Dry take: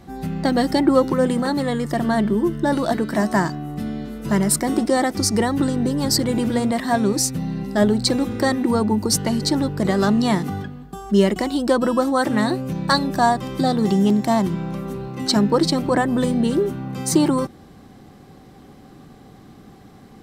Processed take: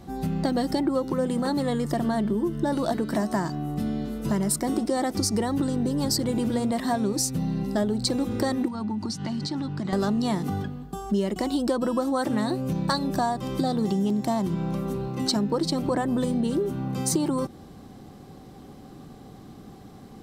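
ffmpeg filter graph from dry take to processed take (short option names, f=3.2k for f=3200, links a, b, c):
-filter_complex "[0:a]asettb=1/sr,asplit=3[a][b][c];[a]atrim=end=8.684[d];[b]atrim=start=8.68:end=9.93,asetpts=PTS-STARTPTS,afade=t=in:d=0.004:c=qsin,afade=t=out:st=1.246:d=0.004:c=qsin,equalizer=f=480:t=o:w=0.71:g=-15,acompressor=threshold=-24dB:ratio=10:attack=3.2:release=140:knee=1:detection=peak,highpass=120,lowpass=5k[e];[c]atrim=start=9.926[f];[d][e]acrossfade=d=0.004:c1=hsin:c2=qsin[g];[g][f]acrossfade=d=0.004:c1=qsin:c2=hsin,equalizer=f=1.9k:t=o:w=1.1:g=-5,acompressor=threshold=-22dB:ratio=5"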